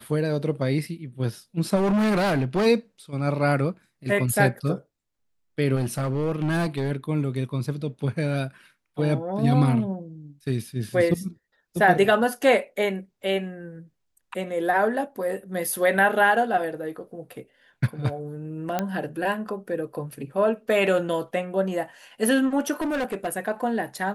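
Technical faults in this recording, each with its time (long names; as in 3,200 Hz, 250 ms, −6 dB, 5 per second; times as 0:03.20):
0:01.75–0:02.67: clipping −19 dBFS
0:05.75–0:06.92: clipping −20.5 dBFS
0:18.79: click −11 dBFS
0:22.80–0:23.28: clipping −23 dBFS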